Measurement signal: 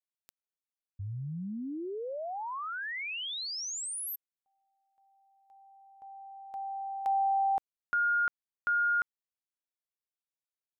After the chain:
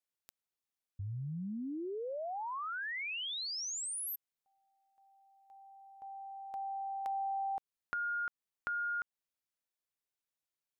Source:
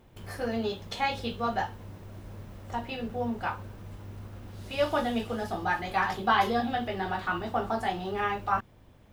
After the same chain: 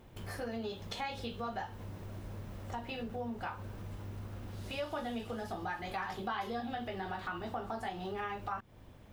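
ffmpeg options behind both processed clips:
-af "acompressor=threshold=-39dB:ratio=3:attack=5.7:release=302:knee=6:detection=peak,volume=1dB"

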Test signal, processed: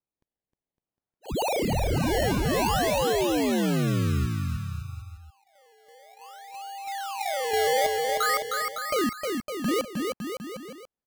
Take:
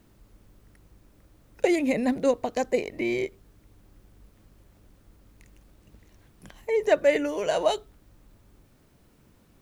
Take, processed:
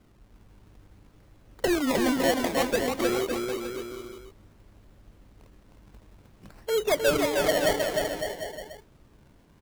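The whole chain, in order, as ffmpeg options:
-af "aresample=16000,asoftclip=type=tanh:threshold=-17dB,aresample=44100,acrusher=samples=24:mix=1:aa=0.000001:lfo=1:lforange=24:lforate=0.56,aecho=1:1:310|558|756.4|915.1|1042:0.631|0.398|0.251|0.158|0.1"

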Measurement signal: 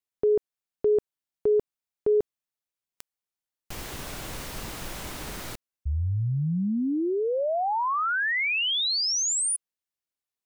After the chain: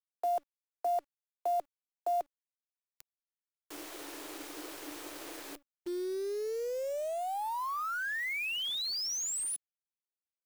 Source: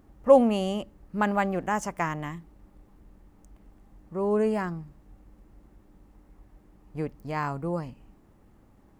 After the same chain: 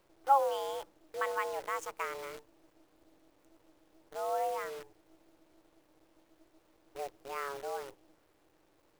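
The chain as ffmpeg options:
-af "afreqshift=280,highpass=47,acrusher=bits=7:dc=4:mix=0:aa=0.000001,volume=-9dB"

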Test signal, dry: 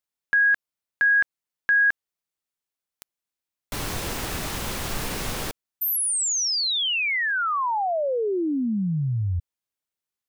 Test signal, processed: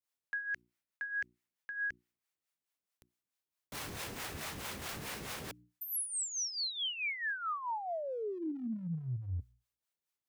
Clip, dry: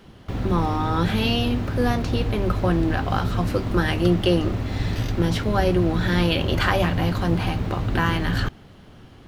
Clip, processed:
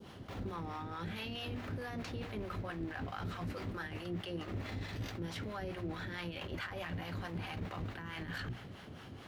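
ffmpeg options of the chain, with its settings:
-filter_complex "[0:a]highpass=67,bandreject=f=60:t=h:w=6,bandreject=f=120:t=h:w=6,bandreject=f=180:t=h:w=6,bandreject=f=240:t=h:w=6,bandreject=f=300:t=h:w=6,bandreject=f=360:t=h:w=6,adynamicequalizer=threshold=0.0126:dfrequency=2000:dqfactor=1.3:tfrequency=2000:tqfactor=1.3:attack=5:release=100:ratio=0.375:range=3:mode=boostabove:tftype=bell,areverse,acompressor=threshold=-33dB:ratio=16:attack=0.17:release=54:knee=6:detection=rms,areverse,acrossover=split=520[a][b];[a]aeval=exprs='val(0)*(1-0.7/2+0.7/2*cos(2*PI*4.6*n/s))':c=same[c];[b]aeval=exprs='val(0)*(1-0.7/2-0.7/2*cos(2*PI*4.6*n/s))':c=same[d];[c][d]amix=inputs=2:normalize=0,volume=1dB"

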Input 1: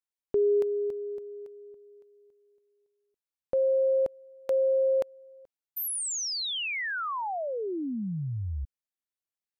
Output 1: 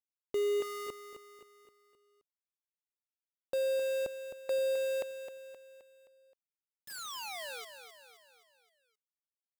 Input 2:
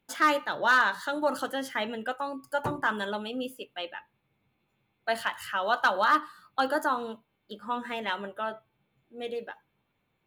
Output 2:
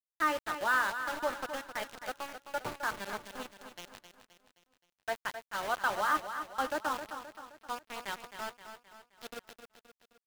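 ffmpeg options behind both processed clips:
-filter_complex "[0:a]bass=f=250:g=-5,treble=f=4k:g=-13,aeval=exprs='val(0)*gte(abs(val(0)),0.0335)':c=same,asplit=2[a][b];[b]aecho=0:1:262|524|786|1048|1310:0.335|0.164|0.0804|0.0394|0.0193[c];[a][c]amix=inputs=2:normalize=0,volume=-6dB"

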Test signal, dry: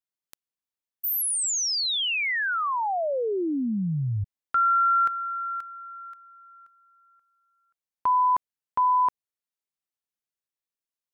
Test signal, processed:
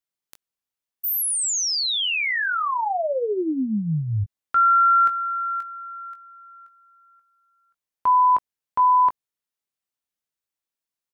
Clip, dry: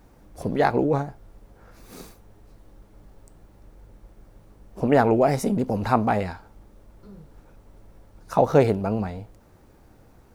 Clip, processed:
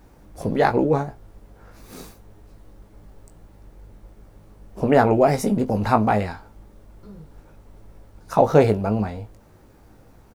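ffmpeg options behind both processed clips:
-filter_complex "[0:a]asplit=2[a][b];[b]adelay=19,volume=-8.5dB[c];[a][c]amix=inputs=2:normalize=0,volume=2dB"

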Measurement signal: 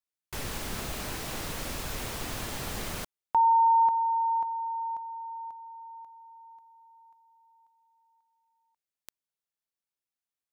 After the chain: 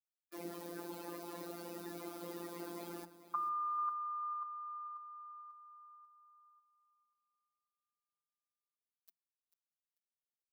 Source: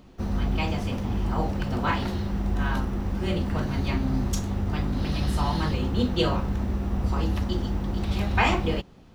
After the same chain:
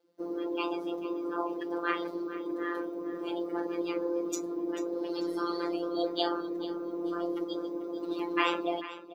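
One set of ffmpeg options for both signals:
-af "afftdn=nr=18:nf=-34,afreqshift=230,afftfilt=real='hypot(re,im)*cos(PI*b)':imag='0':win_size=1024:overlap=0.75,aexciter=amount=2.3:drive=3.2:freq=4k,aecho=1:1:442|884|1326:0.188|0.0509|0.0137,volume=-2.5dB"

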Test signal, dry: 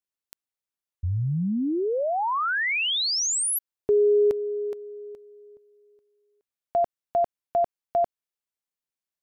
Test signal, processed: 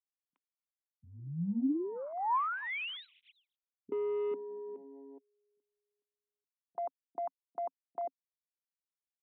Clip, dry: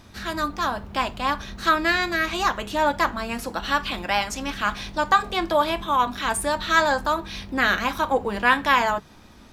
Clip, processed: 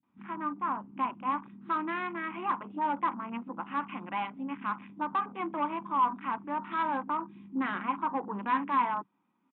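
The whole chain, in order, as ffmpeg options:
-filter_complex "[0:a]afwtdn=0.0282,aresample=8000,volume=16.5dB,asoftclip=hard,volume=-16.5dB,aresample=44100,highpass=f=170:w=0.5412,highpass=f=170:w=1.3066,equalizer=f=180:t=q:w=4:g=5,equalizer=f=270:t=q:w=4:g=8,equalizer=f=450:t=q:w=4:g=-7,equalizer=f=630:t=q:w=4:g=-10,equalizer=f=1k:t=q:w=4:g=7,equalizer=f=1.7k:t=q:w=4:g=-9,lowpass=f=2.5k:w=0.5412,lowpass=f=2.5k:w=1.3066,acrossover=split=220[a][b];[b]adelay=30[c];[a][c]amix=inputs=2:normalize=0,volume=-8dB"

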